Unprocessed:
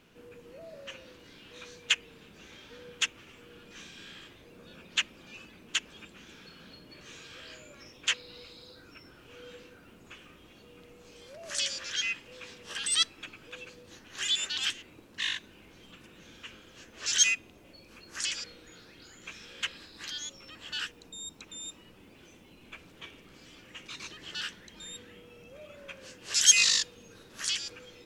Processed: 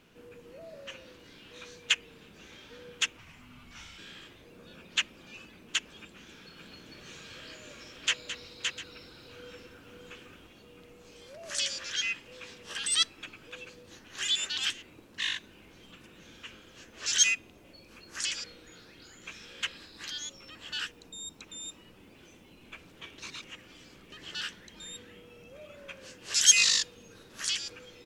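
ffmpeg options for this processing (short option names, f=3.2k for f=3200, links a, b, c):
-filter_complex "[0:a]asplit=3[a][b][c];[a]afade=t=out:st=3.17:d=0.02[d];[b]afreqshift=-230,afade=t=in:st=3.17:d=0.02,afade=t=out:st=3.97:d=0.02[e];[c]afade=t=in:st=3.97:d=0.02[f];[d][e][f]amix=inputs=3:normalize=0,asplit=3[g][h][i];[g]afade=t=out:st=6.56:d=0.02[j];[h]aecho=1:1:216|568|701:0.282|0.596|0.178,afade=t=in:st=6.56:d=0.02,afade=t=out:st=10.46:d=0.02[k];[i]afade=t=in:st=10.46:d=0.02[l];[j][k][l]amix=inputs=3:normalize=0,asplit=3[m][n][o];[m]atrim=end=23.182[p];[n]atrim=start=23.178:end=24.122,asetpts=PTS-STARTPTS,areverse[q];[o]atrim=start=24.118[r];[p][q]acrossfade=d=0.004:c1=hsin:c2=hsin[s];[s][r]acrossfade=d=0.004:c1=hsin:c2=hsin"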